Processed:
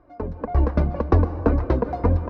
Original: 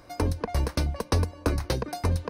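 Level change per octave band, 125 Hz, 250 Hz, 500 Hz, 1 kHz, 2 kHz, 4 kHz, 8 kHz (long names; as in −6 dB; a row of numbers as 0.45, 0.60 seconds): +5.5 dB, +7.5 dB, +6.5 dB, +5.5 dB, −1.0 dB, below −15 dB, below −20 dB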